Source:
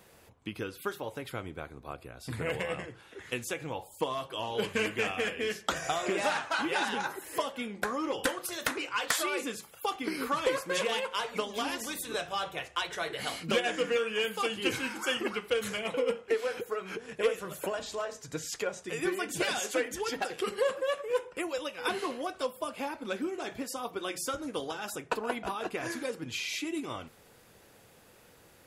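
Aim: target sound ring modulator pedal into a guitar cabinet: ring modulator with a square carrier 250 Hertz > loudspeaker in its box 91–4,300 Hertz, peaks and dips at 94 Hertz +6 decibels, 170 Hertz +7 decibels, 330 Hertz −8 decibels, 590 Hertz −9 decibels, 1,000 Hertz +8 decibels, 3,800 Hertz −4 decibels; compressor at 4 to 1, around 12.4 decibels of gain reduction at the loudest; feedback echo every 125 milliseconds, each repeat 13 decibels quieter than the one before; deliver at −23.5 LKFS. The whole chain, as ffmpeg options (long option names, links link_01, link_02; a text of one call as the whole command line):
ffmpeg -i in.wav -af "acompressor=threshold=-39dB:ratio=4,aecho=1:1:125|250|375:0.224|0.0493|0.0108,aeval=exprs='val(0)*sgn(sin(2*PI*250*n/s))':channel_layout=same,highpass=91,equalizer=frequency=94:width_type=q:width=4:gain=6,equalizer=frequency=170:width_type=q:width=4:gain=7,equalizer=frequency=330:width_type=q:width=4:gain=-8,equalizer=frequency=590:width_type=q:width=4:gain=-9,equalizer=frequency=1000:width_type=q:width=4:gain=8,equalizer=frequency=3800:width_type=q:width=4:gain=-4,lowpass=frequency=4300:width=0.5412,lowpass=frequency=4300:width=1.3066,volume=18dB" out.wav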